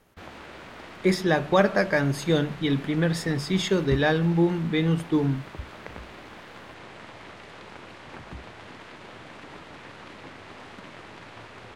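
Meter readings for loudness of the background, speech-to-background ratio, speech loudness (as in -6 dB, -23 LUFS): -42.5 LUFS, 18.5 dB, -24.0 LUFS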